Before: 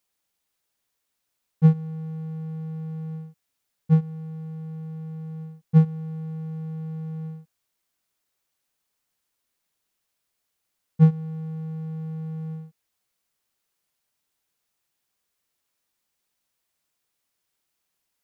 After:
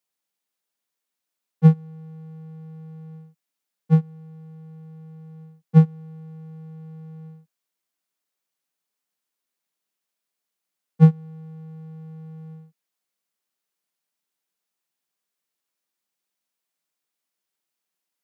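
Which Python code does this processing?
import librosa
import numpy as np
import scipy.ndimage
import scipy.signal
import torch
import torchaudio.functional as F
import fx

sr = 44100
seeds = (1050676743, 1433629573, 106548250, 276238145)

y = scipy.signal.sosfilt(scipy.signal.butter(6, 150.0, 'highpass', fs=sr, output='sos'), x)
y = fx.upward_expand(y, sr, threshold_db=-34.0, expansion=1.5)
y = y * librosa.db_to_amplitude(5.5)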